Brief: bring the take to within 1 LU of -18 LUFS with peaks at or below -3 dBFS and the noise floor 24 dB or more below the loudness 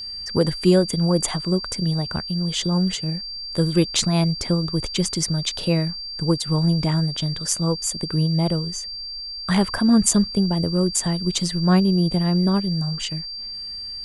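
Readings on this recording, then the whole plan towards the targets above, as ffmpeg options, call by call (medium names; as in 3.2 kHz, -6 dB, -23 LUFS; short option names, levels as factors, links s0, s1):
steady tone 4.7 kHz; tone level -30 dBFS; loudness -21.5 LUFS; peak level -2.5 dBFS; loudness target -18.0 LUFS
-> -af "bandreject=f=4700:w=30"
-af "volume=1.5,alimiter=limit=0.708:level=0:latency=1"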